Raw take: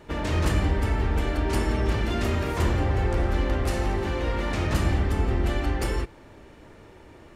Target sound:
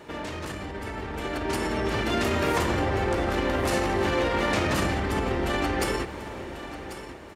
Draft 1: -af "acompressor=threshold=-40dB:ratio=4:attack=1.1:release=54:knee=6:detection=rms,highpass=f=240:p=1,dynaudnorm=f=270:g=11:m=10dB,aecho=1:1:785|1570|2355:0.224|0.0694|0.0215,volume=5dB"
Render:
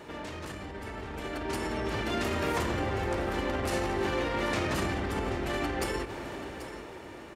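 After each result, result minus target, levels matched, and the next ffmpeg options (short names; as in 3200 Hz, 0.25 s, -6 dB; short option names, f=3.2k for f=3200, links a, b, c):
echo 0.306 s early; compressor: peak gain reduction +5 dB
-af "acompressor=threshold=-40dB:ratio=4:attack=1.1:release=54:knee=6:detection=rms,highpass=f=240:p=1,dynaudnorm=f=270:g=11:m=10dB,aecho=1:1:1091|2182|3273:0.224|0.0694|0.0215,volume=5dB"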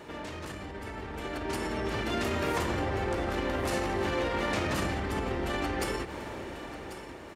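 compressor: peak gain reduction +5 dB
-af "acompressor=threshold=-33dB:ratio=4:attack=1.1:release=54:knee=6:detection=rms,highpass=f=240:p=1,dynaudnorm=f=270:g=11:m=10dB,aecho=1:1:1091|2182|3273:0.224|0.0694|0.0215,volume=5dB"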